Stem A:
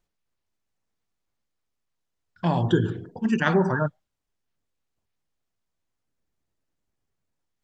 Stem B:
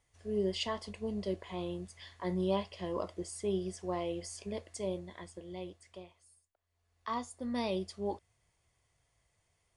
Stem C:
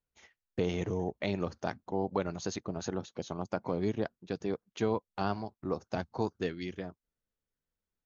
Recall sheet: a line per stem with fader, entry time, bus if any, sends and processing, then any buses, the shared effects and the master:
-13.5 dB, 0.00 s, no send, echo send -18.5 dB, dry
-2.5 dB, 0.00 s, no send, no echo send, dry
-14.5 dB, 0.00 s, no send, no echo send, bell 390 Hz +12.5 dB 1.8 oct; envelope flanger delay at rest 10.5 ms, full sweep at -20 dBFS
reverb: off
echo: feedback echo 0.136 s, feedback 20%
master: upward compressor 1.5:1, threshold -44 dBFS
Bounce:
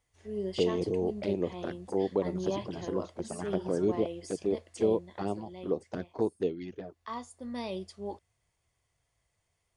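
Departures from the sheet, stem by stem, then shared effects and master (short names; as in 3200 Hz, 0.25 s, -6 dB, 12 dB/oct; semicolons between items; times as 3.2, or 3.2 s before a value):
stem A -13.5 dB -> -24.5 dB; stem C -14.5 dB -> -6.0 dB; master: missing upward compressor 1.5:1, threshold -44 dBFS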